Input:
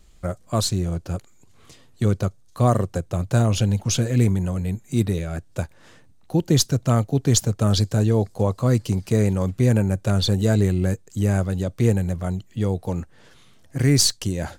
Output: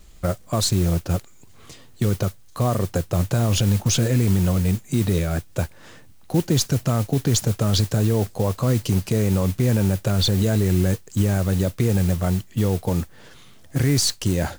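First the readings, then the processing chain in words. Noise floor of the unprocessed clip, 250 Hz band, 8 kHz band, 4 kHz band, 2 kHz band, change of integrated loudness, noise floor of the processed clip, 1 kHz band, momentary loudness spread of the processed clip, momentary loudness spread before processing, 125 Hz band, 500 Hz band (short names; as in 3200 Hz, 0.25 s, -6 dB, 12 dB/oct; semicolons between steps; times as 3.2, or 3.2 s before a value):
-51 dBFS, +0.5 dB, 0.0 dB, +0.5 dB, +1.0 dB, 0.0 dB, -46 dBFS, -1.0 dB, 7 LU, 10 LU, +0.5 dB, -0.5 dB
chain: modulation noise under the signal 19 dB; limiter -15 dBFS, peak gain reduction 10.5 dB; gain +5 dB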